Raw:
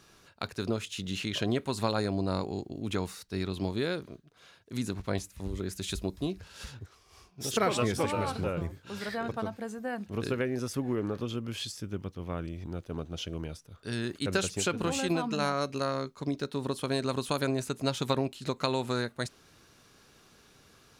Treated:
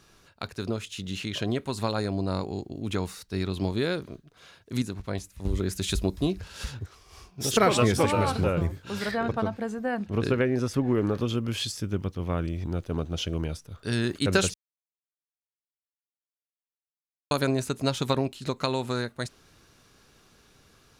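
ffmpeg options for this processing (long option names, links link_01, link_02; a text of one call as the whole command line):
ffmpeg -i in.wav -filter_complex "[0:a]asettb=1/sr,asplit=3[link_01][link_02][link_03];[link_01]atrim=end=9.114[link_04];[link_02]atrim=start=9.11:end=10.95,asetpts=PTS-STARTPTS,afade=type=in:duration=0.004:curve=qsin,afade=type=out:start_time=1.836:duration=0.004:curve=qsin,highshelf=frequency=6200:gain=-10.5[link_05];[link_03]atrim=start=10.946[link_06];[link_04][link_05]acrossfade=duration=0.004:curve1=hsin:curve2=qsin[link_07];[link_07][link_06]acrossfade=duration=0.004:curve1=qsin:curve2=hsin,asplit=5[link_08][link_09][link_10][link_11][link_12];[link_08]atrim=end=4.822[link_13];[link_09]atrim=start=4.818:end=5.452,asetpts=PTS-STARTPTS,volume=-6.5dB[link_14];[link_10]atrim=start=5.448:end=14.54,asetpts=PTS-STARTPTS,afade=type=out:start_time=9.088:duration=0.004:curve=hsin[link_15];[link_11]atrim=start=14.54:end=17.31,asetpts=PTS-STARTPTS,volume=0[link_16];[link_12]atrim=start=17.31,asetpts=PTS-STARTPTS,afade=type=in:duration=0.004:curve=hsin[link_17];[link_13][link_14]acrossfade=duration=0.004:curve1=hsin:curve2=hsin[link_18];[link_15][link_16][link_17]concat=n=3:v=0:a=1[link_19];[link_18][link_19]acrossfade=duration=0.004:curve1=hsin:curve2=hsin,lowshelf=frequency=62:gain=8.5,dynaudnorm=framelen=700:gausssize=11:maxgain=6dB" out.wav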